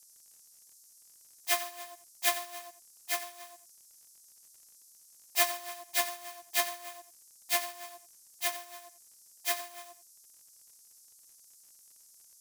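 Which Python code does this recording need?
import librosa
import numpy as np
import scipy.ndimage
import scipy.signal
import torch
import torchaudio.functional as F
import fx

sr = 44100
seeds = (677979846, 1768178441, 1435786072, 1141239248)

y = fx.fix_declick_ar(x, sr, threshold=6.5)
y = fx.noise_reduce(y, sr, print_start_s=0.83, print_end_s=1.33, reduce_db=24.0)
y = fx.fix_echo_inverse(y, sr, delay_ms=89, level_db=-12.5)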